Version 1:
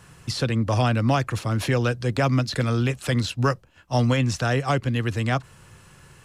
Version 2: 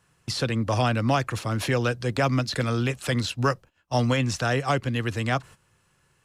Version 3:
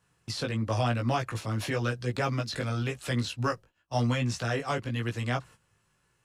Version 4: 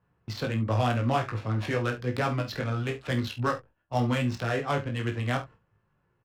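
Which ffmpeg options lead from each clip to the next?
-af "agate=range=-14dB:threshold=-41dB:ratio=16:detection=peak,lowshelf=f=240:g=-4.5"
-af "flanger=delay=16.5:depth=2.3:speed=0.95,volume=-2.5dB"
-af "adynamicsmooth=sensitivity=6:basefreq=1.5k,aecho=1:1:28|48|70:0.335|0.224|0.15,volume=1.5dB"

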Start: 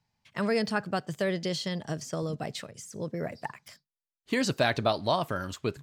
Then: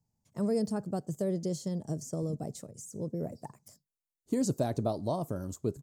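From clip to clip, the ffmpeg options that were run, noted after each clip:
-af "firequalizer=gain_entry='entry(310,0);entry(1600,-22);entry(2800,-25);entry(6700,0)':delay=0.05:min_phase=1"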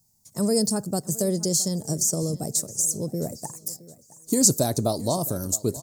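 -af "aexciter=amount=5.2:drive=6.5:freq=4.2k,aecho=1:1:667|1334|2001:0.106|0.0403|0.0153,volume=6.5dB"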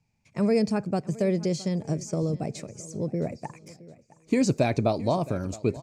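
-af "lowpass=f=2.4k:t=q:w=11"

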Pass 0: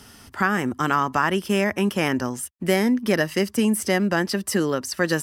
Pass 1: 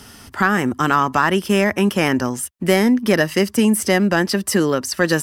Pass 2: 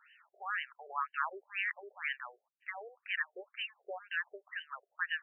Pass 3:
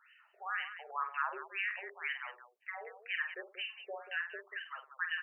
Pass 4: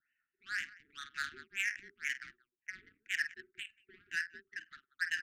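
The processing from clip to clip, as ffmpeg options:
-af "acontrast=33"
-af "aderivative,afftfilt=real='re*between(b*sr/1024,510*pow(2200/510,0.5+0.5*sin(2*PI*2*pts/sr))/1.41,510*pow(2200/510,0.5+0.5*sin(2*PI*2*pts/sr))*1.41)':imag='im*between(b*sr/1024,510*pow(2200/510,0.5+0.5*sin(2*PI*2*pts/sr))/1.41,510*pow(2200/510,0.5+0.5*sin(2*PI*2*pts/sr))*1.41)':win_size=1024:overlap=0.75"
-af "aecho=1:1:48|100|185:0.473|0.15|0.282,volume=-1.5dB"
-af "adynamicsmooth=sensitivity=5.5:basefreq=540,asuperstop=centerf=710:order=12:qfactor=0.6,volume=3.5dB"

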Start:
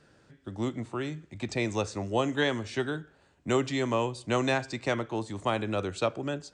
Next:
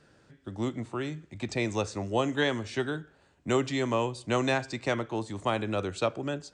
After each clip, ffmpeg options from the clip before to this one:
-af anull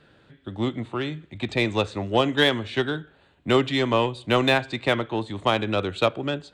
-af "highshelf=f=4.5k:t=q:w=3:g=-7,aeval=exprs='0.224*(cos(1*acos(clip(val(0)/0.224,-1,1)))-cos(1*PI/2))+0.00794*(cos(7*acos(clip(val(0)/0.224,-1,1)))-cos(7*PI/2))':c=same,volume=6.5dB"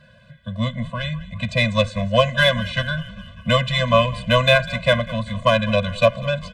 -filter_complex "[0:a]asplit=7[a][b][c][d][e][f][g];[b]adelay=198,afreqshift=-100,volume=-18dB[h];[c]adelay=396,afreqshift=-200,volume=-22dB[i];[d]adelay=594,afreqshift=-300,volume=-26dB[j];[e]adelay=792,afreqshift=-400,volume=-30dB[k];[f]adelay=990,afreqshift=-500,volume=-34.1dB[l];[g]adelay=1188,afreqshift=-600,volume=-38.1dB[m];[a][h][i][j][k][l][m]amix=inputs=7:normalize=0,afftfilt=real='re*eq(mod(floor(b*sr/1024/240),2),0)':imag='im*eq(mod(floor(b*sr/1024/240),2),0)':win_size=1024:overlap=0.75,volume=8dB"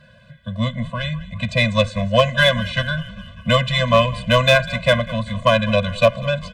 -af "volume=5.5dB,asoftclip=hard,volume=-5.5dB,volume=1.5dB"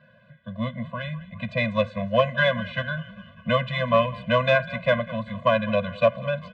-af "highpass=140,lowpass=2.3k,volume=-4.5dB"

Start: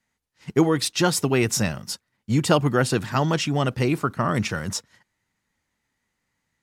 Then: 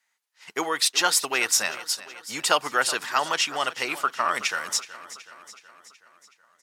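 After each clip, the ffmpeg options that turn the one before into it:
-af "highpass=950,aecho=1:1:373|746|1119|1492|1865|2238:0.158|0.0919|0.0533|0.0309|0.0179|0.0104,volume=4dB"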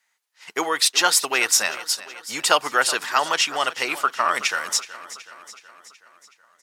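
-af "bass=f=250:g=-5,treble=f=4k:g=0,volume=3.5dB"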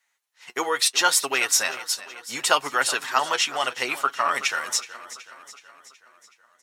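-af "bandreject=f=4.8k:w=17,flanger=delay=7.1:depth=1.3:regen=40:speed=0.71:shape=sinusoidal,volume=2dB"

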